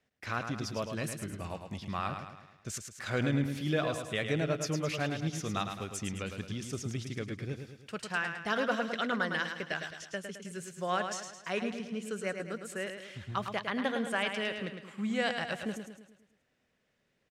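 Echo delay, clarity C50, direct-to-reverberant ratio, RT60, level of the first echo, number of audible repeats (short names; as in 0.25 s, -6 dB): 0.107 s, none, none, none, -7.0 dB, 5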